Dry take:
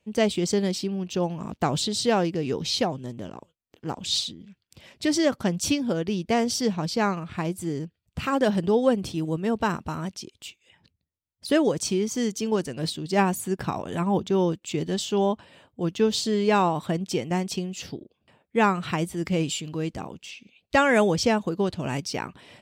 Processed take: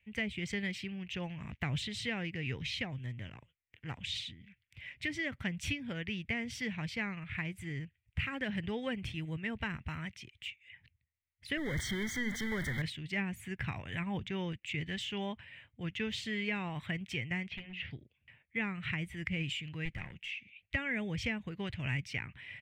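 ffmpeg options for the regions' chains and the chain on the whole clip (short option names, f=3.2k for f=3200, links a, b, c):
-filter_complex "[0:a]asettb=1/sr,asplit=3[a][b][c];[a]atrim=end=11.574[d];[b]atrim=start=11.57:end=12.82,asetpts=PTS-STARTPTS,afade=t=in:d=0.004:c=qsin,afade=t=out:st=1.246:d=0.004:c=qsin,aeval=exprs='val(0)+0.5*0.0596*sgn(val(0))':c=same,asuperstop=centerf=2600:order=12:qfactor=2.8,bandreject=f=119.1:t=h:w=4,bandreject=f=238.2:t=h:w=4,bandreject=f=357.3:t=h:w=4[e];[c]atrim=start=12.816[f];[d][e]acrossfade=d=0.004:c1=hsin:c2=qsin[g];[g][f]acrossfade=d=0.004:c1=qsin:c2=hsin,asettb=1/sr,asplit=3[h][i][j];[h]atrim=end=17.484[k];[i]atrim=start=17.48:end=17.91,asetpts=PTS-STARTPTS,afade=t=in:d=0.004:c=qsin,afade=t=out:st=0.426:d=0.004:c=qsin,lowpass=f=3.5k:w=0.5412,lowpass=f=3.5k:w=1.3066,bandreject=f=60:t=h:w=6,bandreject=f=120:t=h:w=6,bandreject=f=180:t=h:w=6,bandreject=f=240:t=h:w=6,bandreject=f=300:t=h:w=6,bandreject=f=360:t=h:w=6,bandreject=f=420:t=h:w=6,bandreject=f=480:t=h:w=6,volume=31dB,asoftclip=hard,volume=-31dB[l];[j]atrim=start=17.906[m];[k][l]acrossfade=d=0.004:c1=hsin:c2=qsin[n];[n][m]acrossfade=d=0.004:c1=qsin:c2=hsin,asettb=1/sr,asplit=3[o][p][q];[o]atrim=end=19.854[r];[p]atrim=start=19.85:end=20.29,asetpts=PTS-STARTPTS,afade=t=in:d=0.004:c=qsin,afade=t=out:st=0.436:d=0.004:c=qsin,aecho=1:1:5.6:0.31,atrim=end_sample=19404,aeval=exprs='clip(val(0),-1,0.015)':c=same[s];[q]atrim=start=20.286[t];[r][s]acrossfade=d=0.004:c1=hsin:c2=qsin[u];[u][t]acrossfade=d=0.004:c1=qsin:c2=hsin,firequalizer=gain_entry='entry(120,0);entry(170,-11);entry(350,-19);entry(1200,-13);entry(2000,9);entry(4500,-17)':delay=0.05:min_phase=1,acrossover=split=450[v][w];[w]acompressor=threshold=-35dB:ratio=6[x];[v][x]amix=inputs=2:normalize=0"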